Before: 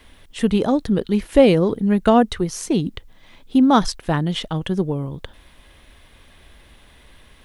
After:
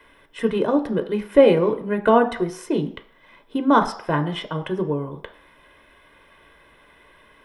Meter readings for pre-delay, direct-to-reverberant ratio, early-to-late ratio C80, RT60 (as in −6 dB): 3 ms, 7.0 dB, 16.0 dB, 0.65 s